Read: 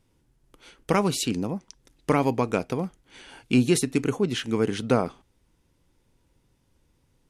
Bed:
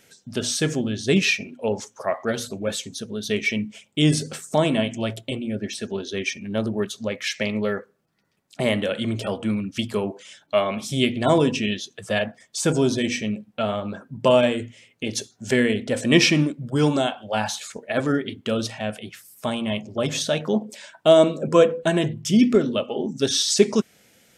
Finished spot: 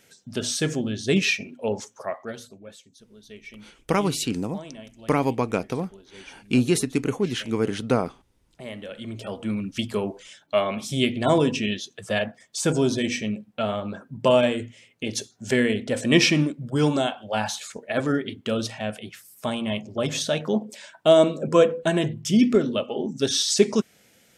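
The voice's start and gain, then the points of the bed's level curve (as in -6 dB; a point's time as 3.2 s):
3.00 s, 0.0 dB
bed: 1.91 s -2 dB
2.79 s -20 dB
8.36 s -20 dB
9.64 s -1.5 dB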